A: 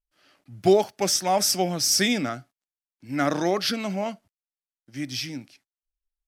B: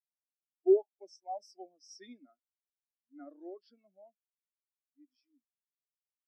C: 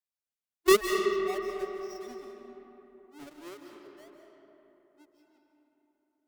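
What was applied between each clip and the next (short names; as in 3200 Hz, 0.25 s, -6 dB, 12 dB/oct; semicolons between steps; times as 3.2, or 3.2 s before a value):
HPF 250 Hz 24 dB/oct; spectral expander 2.5:1; gain -6.5 dB
half-waves squared off; added harmonics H 7 -12 dB, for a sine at -15 dBFS; digital reverb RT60 3.8 s, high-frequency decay 0.45×, pre-delay 0.115 s, DRR 2 dB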